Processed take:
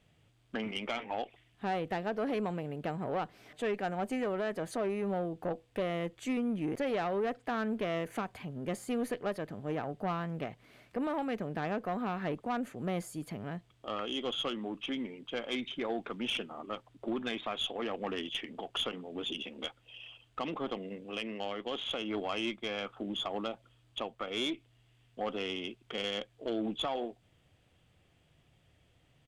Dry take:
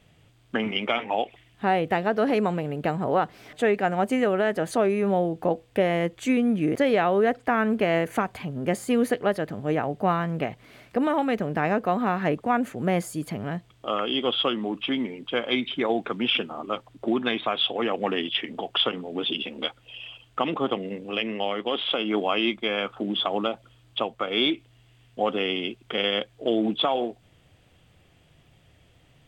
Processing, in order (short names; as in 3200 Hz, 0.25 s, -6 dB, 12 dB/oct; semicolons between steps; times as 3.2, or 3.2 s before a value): tube stage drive 17 dB, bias 0.25; downsampling 32000 Hz; gain -8.5 dB